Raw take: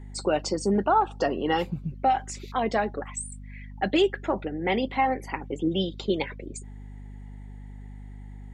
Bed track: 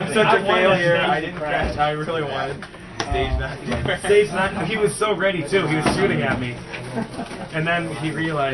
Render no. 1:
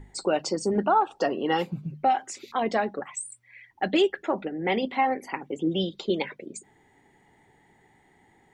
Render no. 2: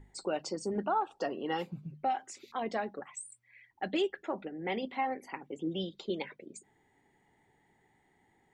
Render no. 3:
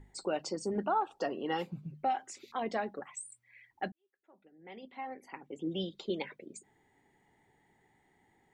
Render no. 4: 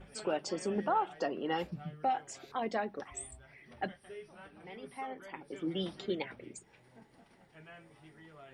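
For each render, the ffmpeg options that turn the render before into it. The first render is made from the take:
-af "bandreject=f=50:t=h:w=6,bandreject=f=100:t=h:w=6,bandreject=f=150:t=h:w=6,bandreject=f=200:t=h:w=6,bandreject=f=250:t=h:w=6"
-af "volume=-9dB"
-filter_complex "[0:a]asplit=2[a][b];[a]atrim=end=3.92,asetpts=PTS-STARTPTS,afade=t=out:st=3.916:d=0.004:c=hsin[c];[b]atrim=start=3.92,asetpts=PTS-STARTPTS,afade=t=in:d=1.87:c=qua[d];[c][d]concat=n=2:v=0:a=1"
-filter_complex "[1:a]volume=-32.5dB[a];[0:a][a]amix=inputs=2:normalize=0"

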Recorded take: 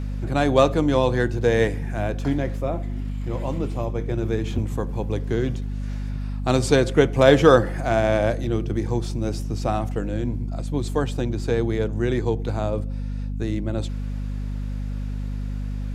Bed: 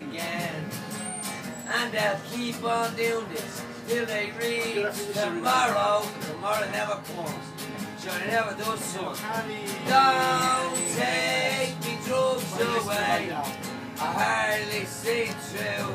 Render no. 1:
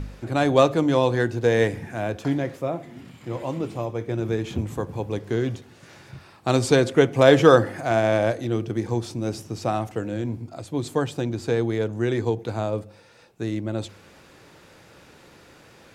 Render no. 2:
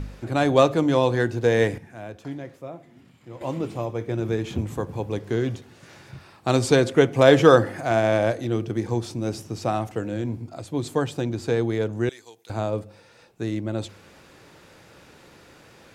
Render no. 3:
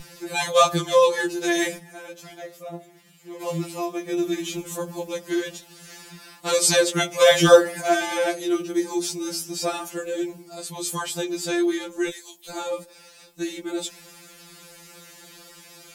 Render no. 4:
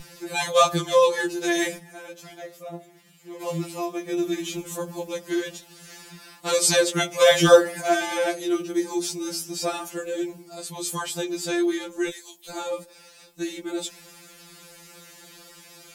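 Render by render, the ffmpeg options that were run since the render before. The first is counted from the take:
-af "bandreject=f=50:t=h:w=4,bandreject=f=100:t=h:w=4,bandreject=f=150:t=h:w=4,bandreject=f=200:t=h:w=4,bandreject=f=250:t=h:w=4"
-filter_complex "[0:a]asettb=1/sr,asplit=3[a][b][c];[a]atrim=end=12.094[d];[b]atrim=start=12.09:end=12.5,asetpts=PTS-STARTPTS,afade=t=in:d=0.004:c=qsin,afade=t=out:st=0.406:d=0.004:c=qsin,aderivative[e];[c]atrim=start=12.496[f];[d][e]acrossfade=d=0.004:c1=hsin:c2=qsin[g];[g][f]acrossfade=d=0.004:c1=qsin:c2=hsin,asplit=3[h][i][j];[h]atrim=end=1.782[k];[i]atrim=start=1.778:end=3.412,asetpts=PTS-STARTPTS,volume=-10dB[l];[j]atrim=start=3.408[m];[k][l]acrossfade=d=0.004:c1=hsin:c2=hsin[n];[n][m]acrossfade=d=0.004:c1=hsin:c2=hsin"
-af "crystalizer=i=5:c=0,afftfilt=real='re*2.83*eq(mod(b,8),0)':imag='im*2.83*eq(mod(b,8),0)':win_size=2048:overlap=0.75"
-af "volume=-1dB"

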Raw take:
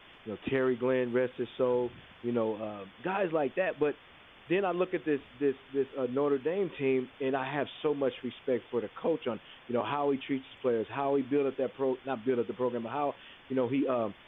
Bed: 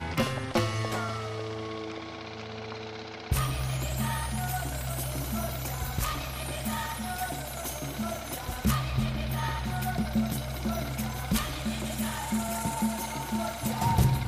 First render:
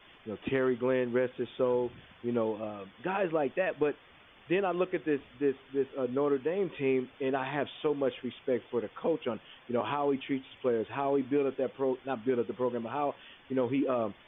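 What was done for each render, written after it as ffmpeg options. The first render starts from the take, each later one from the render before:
-af "afftdn=nr=6:nf=-55"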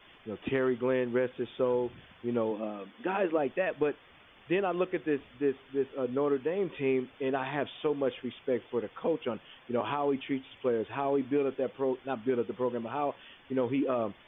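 -filter_complex "[0:a]asettb=1/sr,asplit=3[a][b][c];[a]atrim=end=2.514[d];[b]atrim=start=2.51:end=3.38,asetpts=PTS-STARTPTS,afade=t=in:d=0.004:c=qsin,afade=t=out:st=0.866:d=0.004:c=qsin,lowshelf=f=180:t=q:w=3:g=-8[e];[c]atrim=start=3.376[f];[d][e]acrossfade=d=0.004:c1=hsin:c2=qsin[g];[g][f]acrossfade=d=0.004:c1=qsin:c2=hsin"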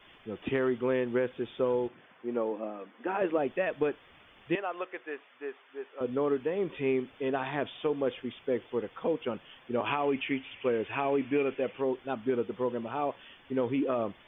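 -filter_complex "[0:a]asettb=1/sr,asplit=3[a][b][c];[a]atrim=end=1.884[d];[b]atrim=start=1.88:end=3.22,asetpts=PTS-STARTPTS,afade=t=in:d=0.004:c=qsin,afade=t=out:st=1.336:d=0.004:c=qsin,highpass=260,lowpass=2.2k[e];[c]atrim=start=3.216[f];[d][e]acrossfade=d=0.004:c1=hsin:c2=qsin[g];[g][f]acrossfade=d=0.004:c1=qsin:c2=hsin,asettb=1/sr,asplit=3[h][i][j];[h]atrim=end=4.554[k];[i]atrim=start=4.55:end=6.01,asetpts=PTS-STARTPTS,afade=t=in:d=0.004:c=qsin,afade=t=out:st=1.456:d=0.004:c=qsin,highpass=700,lowpass=2.7k[l];[j]atrim=start=6.006[m];[k][l]acrossfade=d=0.004:c1=hsin:c2=qsin[n];[n][m]acrossfade=d=0.004:c1=qsin:c2=hsin,asettb=1/sr,asplit=3[o][p][q];[o]atrim=end=9.864[r];[p]atrim=start=9.86:end=11.82,asetpts=PTS-STARTPTS,afade=t=in:d=0.004:c=qsin,afade=t=out:st=1.956:d=0.004:c=qsin,lowpass=f=2.6k:t=q:w=2.9[s];[q]atrim=start=11.816[t];[r][s]acrossfade=d=0.004:c1=hsin:c2=qsin[u];[u][t]acrossfade=d=0.004:c1=qsin:c2=hsin"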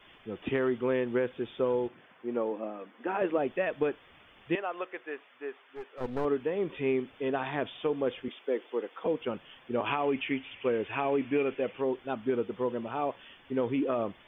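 -filter_complex "[0:a]asettb=1/sr,asplit=3[a][b][c];[a]atrim=end=5.644[d];[b]atrim=start=5.64:end=6.25,asetpts=PTS-STARTPTS,afade=t=in:d=0.004:c=qsin,afade=t=out:st=0.606:d=0.004:c=qsin,aeval=exprs='clip(val(0),-1,0.00841)':c=same[e];[c]atrim=start=6.246[f];[d][e]acrossfade=d=0.004:c1=hsin:c2=qsin[g];[g][f]acrossfade=d=0.004:c1=qsin:c2=hsin,asettb=1/sr,asplit=3[h][i][j];[h]atrim=end=8.284[k];[i]atrim=start=8.28:end=9.06,asetpts=PTS-STARTPTS,afade=t=in:d=0.004:c=qsin,afade=t=out:st=0.776:d=0.004:c=qsin,highpass=f=270:w=0.5412,highpass=f=270:w=1.3066[l];[j]atrim=start=9.056[m];[k][l]acrossfade=d=0.004:c1=hsin:c2=qsin[n];[n][m]acrossfade=d=0.004:c1=qsin:c2=hsin"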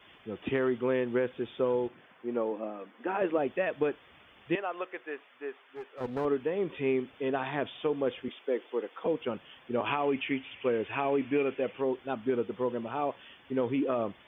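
-af "highpass=46"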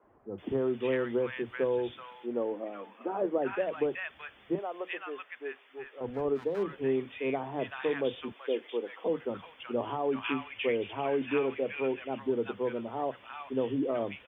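-filter_complex "[0:a]acrossover=split=190|1100[a][b][c];[a]adelay=30[d];[c]adelay=380[e];[d][b][e]amix=inputs=3:normalize=0"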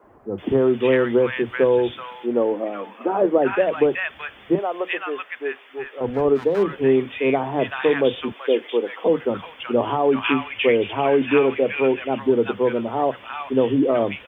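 -af "volume=12dB"

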